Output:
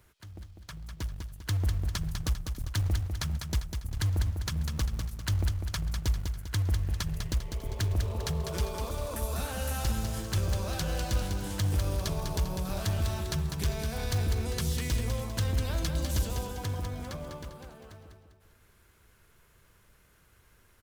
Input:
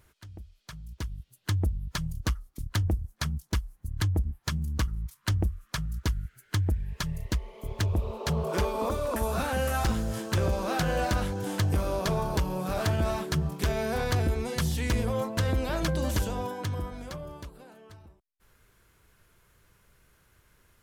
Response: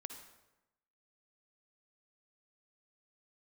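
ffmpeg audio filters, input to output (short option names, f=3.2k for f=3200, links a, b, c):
-filter_complex "[0:a]acrossover=split=130|3000[a][b][c];[b]acompressor=threshold=-37dB:ratio=6[d];[a][d][c]amix=inputs=3:normalize=0,asplit=2[e][f];[f]acrusher=bits=3:mode=log:mix=0:aa=0.000001,volume=-3.5dB[g];[e][g]amix=inputs=2:normalize=0,aecho=1:1:199|398|597|796|995:0.501|0.216|0.0927|0.0398|0.0171,volume=-5dB"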